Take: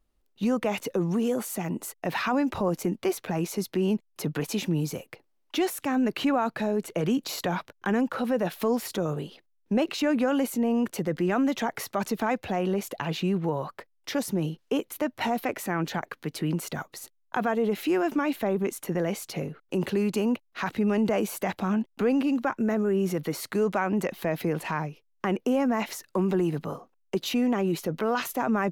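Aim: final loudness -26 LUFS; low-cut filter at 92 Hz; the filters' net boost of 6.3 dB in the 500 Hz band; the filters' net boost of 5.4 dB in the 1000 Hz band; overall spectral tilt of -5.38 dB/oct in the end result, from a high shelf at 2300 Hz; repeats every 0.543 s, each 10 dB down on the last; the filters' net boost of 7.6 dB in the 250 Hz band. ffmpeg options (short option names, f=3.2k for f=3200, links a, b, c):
-af "highpass=92,equalizer=f=250:t=o:g=8,equalizer=f=500:t=o:g=4,equalizer=f=1k:t=o:g=3.5,highshelf=f=2.3k:g=8.5,aecho=1:1:543|1086|1629|2172:0.316|0.101|0.0324|0.0104,volume=-5dB"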